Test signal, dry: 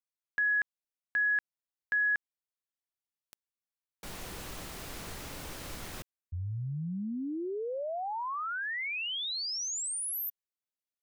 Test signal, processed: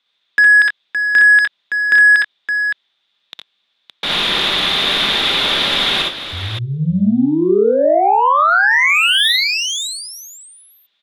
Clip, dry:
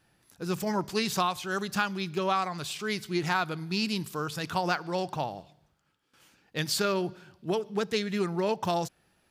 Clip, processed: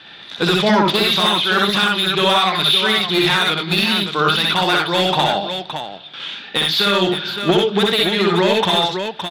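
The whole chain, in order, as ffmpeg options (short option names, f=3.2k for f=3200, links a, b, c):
-filter_complex "[0:a]lowpass=f=3.6k:t=q:w=10,tiltshelf=f=1.5k:g=-5.5,acompressor=threshold=-24dB:ratio=5:attack=0.43:release=626:knee=1:detection=rms,asoftclip=type=tanh:threshold=-31dB,acrossover=split=160 2500:gain=0.224 1 0.251[a][b][c];[a][b][c]amix=inputs=3:normalize=0,aecho=1:1:60|65|85|566:0.631|0.631|0.355|0.398,alimiter=level_in=29dB:limit=-1dB:release=50:level=0:latency=1,volume=-4dB"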